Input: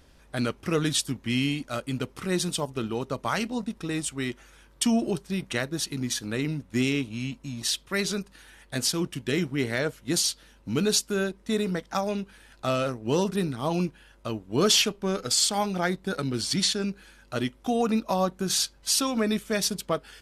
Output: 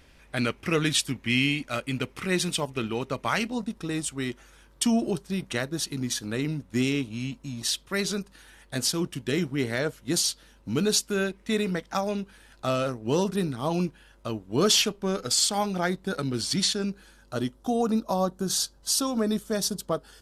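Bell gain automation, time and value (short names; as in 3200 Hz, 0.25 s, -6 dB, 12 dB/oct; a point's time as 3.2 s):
bell 2300 Hz 0.82 oct
3.25 s +8 dB
3.65 s -2 dB
10.92 s -2 dB
11.39 s +8 dB
12.13 s -2 dB
16.7 s -2 dB
17.62 s -13 dB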